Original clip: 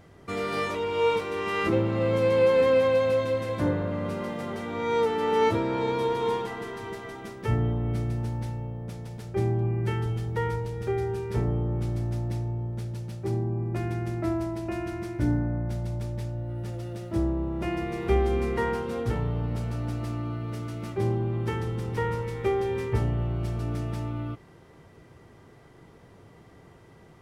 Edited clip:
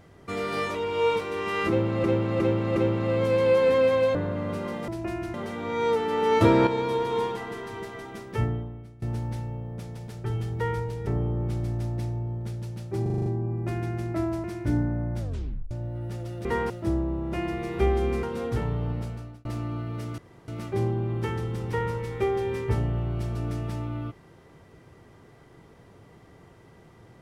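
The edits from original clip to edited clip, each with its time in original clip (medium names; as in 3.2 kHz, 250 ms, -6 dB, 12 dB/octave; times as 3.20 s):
1.68–2.04 s: loop, 4 plays
3.07–3.71 s: delete
5.51–5.77 s: gain +8.5 dB
7.50–8.12 s: fade out quadratic, to -21.5 dB
9.35–10.01 s: delete
10.83–11.39 s: delete
13.34 s: stutter 0.04 s, 7 plays
14.52–14.98 s: move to 4.44 s
15.73 s: tape stop 0.52 s
18.52–18.77 s: move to 16.99 s
19.45–19.99 s: fade out
20.72 s: insert room tone 0.30 s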